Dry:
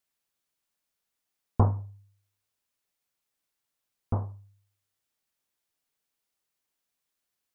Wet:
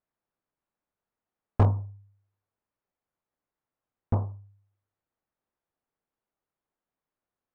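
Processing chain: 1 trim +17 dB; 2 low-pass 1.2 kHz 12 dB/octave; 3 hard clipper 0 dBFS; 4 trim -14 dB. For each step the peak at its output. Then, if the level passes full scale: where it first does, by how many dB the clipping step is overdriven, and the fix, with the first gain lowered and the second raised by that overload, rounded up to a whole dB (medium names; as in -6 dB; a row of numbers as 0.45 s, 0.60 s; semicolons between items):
+7.0 dBFS, +6.5 dBFS, 0.0 dBFS, -14.0 dBFS; step 1, 6.5 dB; step 1 +10 dB, step 4 -7 dB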